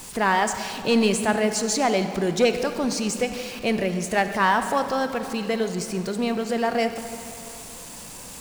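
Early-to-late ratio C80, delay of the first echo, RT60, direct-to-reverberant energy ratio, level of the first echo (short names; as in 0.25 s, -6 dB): 9.5 dB, none, 2.8 s, 8.0 dB, none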